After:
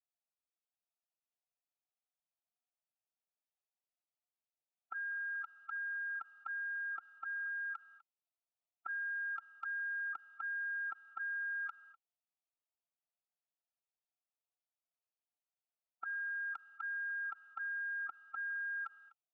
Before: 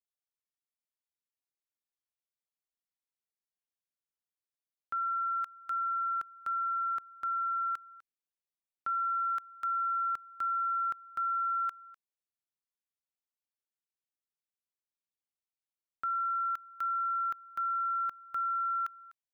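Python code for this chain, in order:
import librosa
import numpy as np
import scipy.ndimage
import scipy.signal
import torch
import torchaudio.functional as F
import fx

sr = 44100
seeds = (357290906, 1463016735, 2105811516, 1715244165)

y = fx.vowel_filter(x, sr, vowel='a')
y = fx.pitch_keep_formants(y, sr, semitones=3.0)
y = y * librosa.db_to_amplitude(6.5)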